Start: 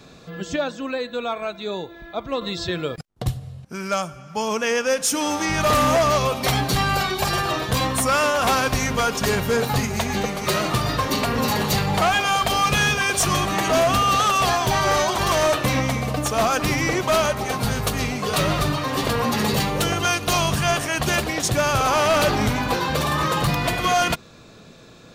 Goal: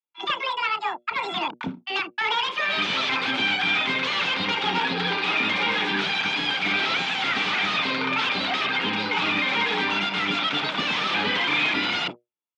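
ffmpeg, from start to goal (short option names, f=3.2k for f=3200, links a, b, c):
-filter_complex "[0:a]agate=range=-57dB:threshold=-32dB:ratio=16:detection=peak,equalizer=f=1.7k:t=o:w=3:g=7,bandreject=f=60:t=h:w=6,bandreject=f=120:t=h:w=6,bandreject=f=180:t=h:w=6,bandreject=f=240:t=h:w=6,bandreject=f=300:t=h:w=6,acrossover=split=270[a][b];[b]aeval=exprs='(mod(3.76*val(0)+1,2)-1)/3.76':c=same[c];[a][c]amix=inputs=2:normalize=0,tremolo=f=58:d=0.462,asoftclip=type=hard:threshold=-22dB,acrossover=split=470[d][e];[d]adelay=60[f];[f][e]amix=inputs=2:normalize=0,asetrate=88200,aresample=44100,highpass=170,equalizer=f=180:t=q:w=4:g=6,equalizer=f=570:t=q:w=4:g=-4,equalizer=f=870:t=q:w=4:g=7,equalizer=f=1.3k:t=q:w=4:g=4,equalizer=f=2.4k:t=q:w=4:g=5,equalizer=f=3.4k:t=q:w=4:g=6,lowpass=f=3.7k:w=0.5412,lowpass=f=3.7k:w=1.3066"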